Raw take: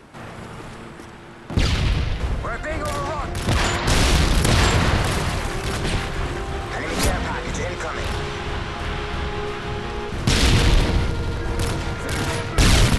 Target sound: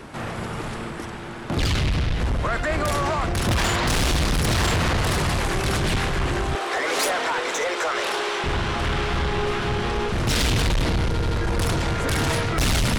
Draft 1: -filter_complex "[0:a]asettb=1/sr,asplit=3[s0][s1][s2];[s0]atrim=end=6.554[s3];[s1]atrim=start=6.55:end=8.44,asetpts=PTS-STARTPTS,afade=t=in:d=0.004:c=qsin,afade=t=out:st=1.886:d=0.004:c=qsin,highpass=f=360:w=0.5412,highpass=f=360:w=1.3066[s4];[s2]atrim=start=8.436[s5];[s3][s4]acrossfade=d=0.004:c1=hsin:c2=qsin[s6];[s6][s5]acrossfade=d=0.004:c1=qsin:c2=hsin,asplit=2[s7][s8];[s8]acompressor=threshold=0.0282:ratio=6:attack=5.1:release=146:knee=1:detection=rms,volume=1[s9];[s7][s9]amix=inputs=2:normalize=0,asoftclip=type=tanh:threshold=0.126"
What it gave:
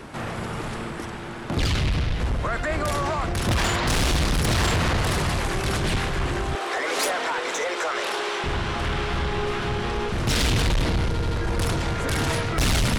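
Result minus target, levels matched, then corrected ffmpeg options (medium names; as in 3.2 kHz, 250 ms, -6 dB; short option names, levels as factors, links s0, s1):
compression: peak gain reduction +9 dB
-filter_complex "[0:a]asettb=1/sr,asplit=3[s0][s1][s2];[s0]atrim=end=6.554[s3];[s1]atrim=start=6.55:end=8.44,asetpts=PTS-STARTPTS,afade=t=in:d=0.004:c=qsin,afade=t=out:st=1.886:d=0.004:c=qsin,highpass=f=360:w=0.5412,highpass=f=360:w=1.3066[s4];[s2]atrim=start=8.436[s5];[s3][s4]acrossfade=d=0.004:c1=hsin:c2=qsin[s6];[s6][s5]acrossfade=d=0.004:c1=qsin:c2=hsin,asplit=2[s7][s8];[s8]acompressor=threshold=0.1:ratio=6:attack=5.1:release=146:knee=1:detection=rms,volume=1[s9];[s7][s9]amix=inputs=2:normalize=0,asoftclip=type=tanh:threshold=0.126"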